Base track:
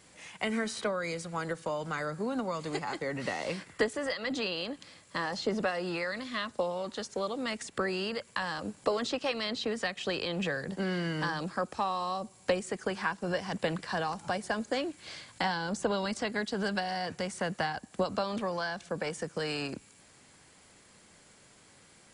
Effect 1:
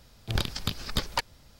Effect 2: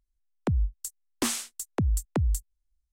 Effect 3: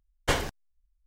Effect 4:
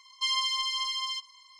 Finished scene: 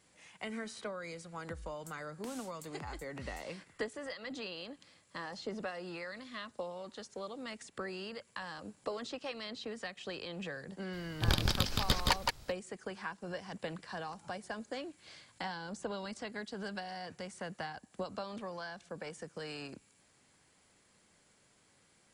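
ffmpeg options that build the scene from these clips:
ffmpeg -i bed.wav -i cue0.wav -i cue1.wav -filter_complex "[0:a]volume=-9.5dB[link_01];[2:a]acompressor=threshold=-33dB:ratio=6:attack=3.2:release=140:knee=1:detection=peak[link_02];[1:a]aecho=1:1:170:0.708[link_03];[link_02]atrim=end=2.92,asetpts=PTS-STARTPTS,volume=-13.5dB,afade=type=in:duration=0.004:curve=hsin,afade=type=out:start_time=2.916:duration=0.004:curve=hsin,adelay=1020[link_04];[link_03]atrim=end=1.59,asetpts=PTS-STARTPTS,volume=-1.5dB,afade=type=in:duration=0.004:curve=hsin,afade=type=out:start_time=1.586:duration=0.004:curve=hsin,adelay=10930[link_05];[link_01][link_04][link_05]amix=inputs=3:normalize=0" out.wav

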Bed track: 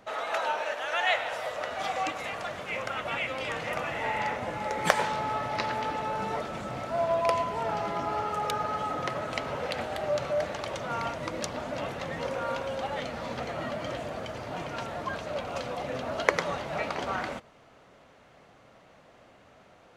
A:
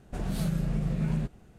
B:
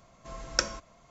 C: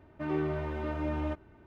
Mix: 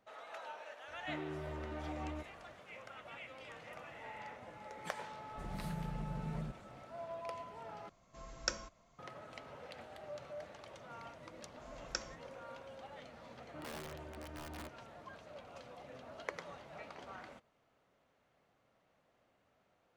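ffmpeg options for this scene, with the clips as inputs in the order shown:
ffmpeg -i bed.wav -i cue0.wav -i cue1.wav -i cue2.wav -filter_complex "[3:a]asplit=2[link_01][link_02];[2:a]asplit=2[link_03][link_04];[0:a]volume=-18.5dB[link_05];[link_01]acompressor=threshold=-32dB:ratio=6:attack=3.2:release=140:knee=1:detection=peak[link_06];[link_02]aeval=exprs='(mod(20*val(0)+1,2)-1)/20':channel_layout=same[link_07];[link_05]asplit=2[link_08][link_09];[link_08]atrim=end=7.894[link_10];[link_03]atrim=end=1.1,asetpts=PTS-STARTPTS,volume=-9.5dB[link_11];[link_09]atrim=start=8.986[link_12];[link_06]atrim=end=1.66,asetpts=PTS-STARTPTS,volume=-7dB,afade=type=in:duration=0.004:curve=hsin,afade=type=out:start_time=1.656:duration=0.004:curve=hsin,adelay=880[link_13];[1:a]atrim=end=1.58,asetpts=PTS-STARTPTS,volume=-13dB,afade=type=in:duration=0.004:curve=hsin,afade=type=out:start_time=1.576:duration=0.004:curve=hsin,adelay=231525S[link_14];[link_04]atrim=end=1.1,asetpts=PTS-STARTPTS,volume=-13.5dB,afade=type=in:duration=0.004:curve=hsin,afade=type=out:start_time=1.096:duration=0.004:curve=hsin,adelay=11360[link_15];[link_07]atrim=end=1.66,asetpts=PTS-STARTPTS,volume=-15.5dB,afade=type=in:duration=0.004:curve=hsin,afade=type=out:start_time=1.656:duration=0.004:curve=hsin,adelay=13340[link_16];[link_10][link_11]acrossfade=duration=0.004:curve1=hsin:curve2=hsin[link_17];[link_17][link_12]acrossfade=duration=0.004:curve1=hsin:curve2=hsin[link_18];[link_18][link_13][link_14][link_15][link_16]amix=inputs=5:normalize=0" out.wav

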